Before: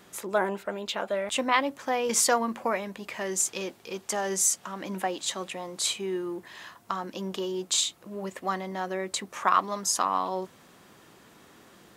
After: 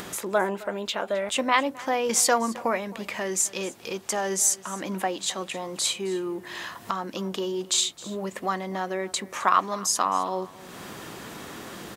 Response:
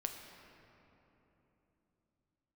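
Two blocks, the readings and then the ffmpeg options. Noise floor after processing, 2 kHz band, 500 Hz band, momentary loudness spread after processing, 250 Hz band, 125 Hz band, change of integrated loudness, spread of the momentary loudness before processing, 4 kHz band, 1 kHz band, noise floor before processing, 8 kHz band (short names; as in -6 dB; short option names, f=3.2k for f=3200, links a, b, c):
-46 dBFS, +2.5 dB, +2.5 dB, 15 LU, +2.5 dB, +3.0 dB, +2.0 dB, 12 LU, +2.5 dB, +2.0 dB, -56 dBFS, +2.0 dB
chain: -af "acompressor=mode=upward:threshold=-29dB:ratio=2.5,aecho=1:1:264:0.106,volume=2dB"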